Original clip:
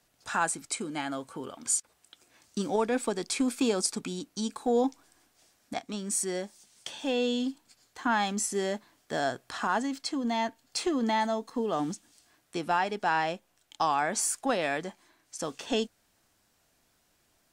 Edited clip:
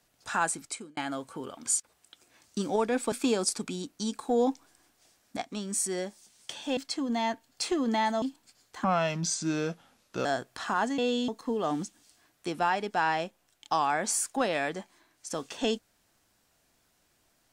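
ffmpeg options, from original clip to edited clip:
-filter_complex "[0:a]asplit=9[a][b][c][d][e][f][g][h][i];[a]atrim=end=0.97,asetpts=PTS-STARTPTS,afade=t=out:st=0.59:d=0.38[j];[b]atrim=start=0.97:end=3.122,asetpts=PTS-STARTPTS,afade=t=in:d=0.004:c=hsin[k];[c]atrim=start=3.488:end=7.142[l];[d]atrim=start=9.918:end=11.372[m];[e]atrim=start=7.438:end=8.064[n];[f]atrim=start=8.06:end=9.19,asetpts=PTS-STARTPTS,asetrate=35280,aresample=44100,atrim=end_sample=62291,asetpts=PTS-STARTPTS[o];[g]atrim=start=9.186:end=9.922[p];[h]atrim=start=7.138:end=7.442[q];[i]atrim=start=11.368[r];[j][k]concat=n=2:v=0:a=1[s];[s][l]acrossfade=d=0.004:c1=hsin:c2=hsin[t];[t][m]acrossfade=d=0.004:c1=hsin:c2=hsin[u];[u][n]acrossfade=d=0.004:c1=hsin:c2=hsin[v];[v][o]acrossfade=d=0.004:c1=hsin:c2=hsin[w];[w][p]acrossfade=d=0.004:c1=hsin:c2=hsin[x];[x][q]acrossfade=d=0.004:c1=hsin:c2=hsin[y];[y][r]acrossfade=d=0.004:c1=hsin:c2=hsin"

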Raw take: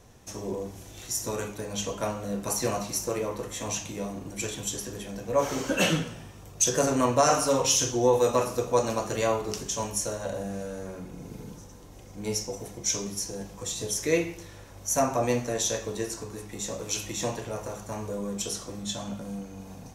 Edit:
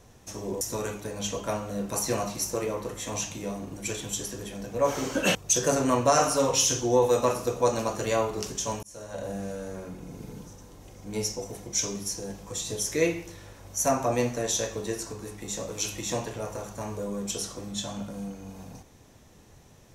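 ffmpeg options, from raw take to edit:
-filter_complex "[0:a]asplit=4[a][b][c][d];[a]atrim=end=0.612[e];[b]atrim=start=1.148:end=5.892[f];[c]atrim=start=6.458:end=9.94,asetpts=PTS-STARTPTS,afade=t=out:st=3.478:d=0.004:c=hsin[g];[d]atrim=start=9.94,asetpts=PTS-STARTPTS,afade=t=in:d=0.5[h];[e][f]acrossfade=d=0.004:c1=hsin:c2=hsin[i];[g][h]concat=n=2:v=0:a=1[j];[i][j]acrossfade=d=0.004:c1=hsin:c2=hsin"

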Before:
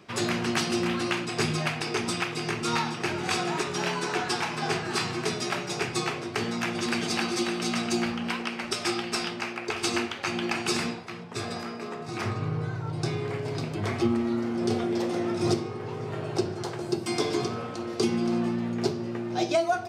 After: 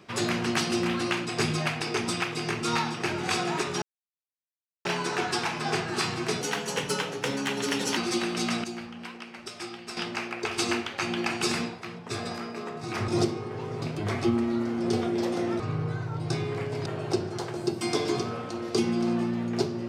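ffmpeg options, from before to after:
-filter_complex "[0:a]asplit=10[a][b][c][d][e][f][g][h][i][j];[a]atrim=end=3.82,asetpts=PTS-STARTPTS,afade=t=out:st=3.816:d=0.004:c=hsin,apad=pad_dur=1.03[k];[b]atrim=start=3.82:end=5.384,asetpts=PTS-STARTPTS,afade=t=in:d=0.004:c=hsin[l];[c]atrim=start=5.38:end=7.22,asetpts=PTS-STARTPTS,asetrate=52038,aresample=44100,atrim=end_sample=68766,asetpts=PTS-STARTPTS[m];[d]atrim=start=7.216:end=7.892[n];[e]atrim=start=7.888:end=9.222,asetpts=PTS-STARTPTS,volume=-10dB[o];[f]atrim=start=9.218:end=12.332[p];[g]atrim=start=15.368:end=16.112[q];[h]atrim=start=13.588:end=15.372[r];[i]atrim=start=12.328:end=13.592[s];[j]atrim=start=16.108[t];[k][l]concat=n=2:v=0:a=1[u];[u][m]acrossfade=d=0.004:c1=hsin:c2=hsin[v];[v][n]acrossfade=d=0.004:c1=hsin:c2=hsin[w];[w][o]acrossfade=d=0.004:c1=hsin:c2=hsin[x];[x][p]acrossfade=d=0.004:c1=hsin:c2=hsin[y];[y][q]acrossfade=d=0.004:c1=hsin:c2=hsin[z];[z][r]acrossfade=d=0.004:c1=hsin:c2=hsin[aa];[aa][s]acrossfade=d=0.004:c1=hsin:c2=hsin[ab];[ab][t]acrossfade=d=0.004:c1=hsin:c2=hsin"

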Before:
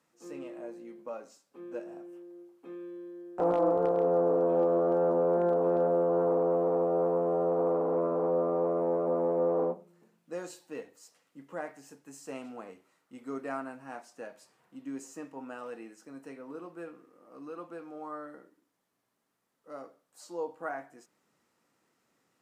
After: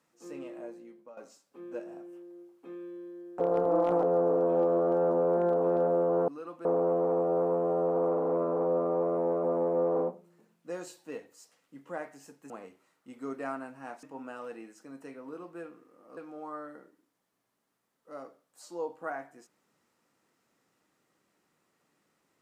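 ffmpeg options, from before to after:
-filter_complex "[0:a]asplit=9[a][b][c][d][e][f][g][h][i];[a]atrim=end=1.17,asetpts=PTS-STARTPTS,afade=t=out:st=0.62:d=0.55:silence=0.188365[j];[b]atrim=start=1.17:end=3.402,asetpts=PTS-STARTPTS,afade=t=in:d=0.004:c=hsin:silence=0.188365[k];[c]atrim=start=3.398:end=4.032,asetpts=PTS-STARTPTS,areverse[l];[d]atrim=start=4.028:end=6.282[m];[e]atrim=start=17.388:end=17.762[n];[f]atrim=start=6.278:end=12.132[o];[g]atrim=start=12.548:end=14.082[p];[h]atrim=start=15.248:end=17.392[q];[i]atrim=start=17.758[r];[j][k]concat=n=2:v=0:a=1[s];[s][l]acrossfade=d=0.004:c1=hsin:c2=hsin[t];[t][m]acrossfade=d=0.004:c1=hsin:c2=hsin[u];[u][n]acrossfade=d=0.004:c1=hsin:c2=hsin[v];[v][o]acrossfade=d=0.004:c1=hsin:c2=hsin[w];[w][p]acrossfade=d=0.004:c1=hsin:c2=hsin[x];[x][q]acrossfade=d=0.004:c1=hsin:c2=hsin[y];[y][r]acrossfade=d=0.004:c1=hsin:c2=hsin"

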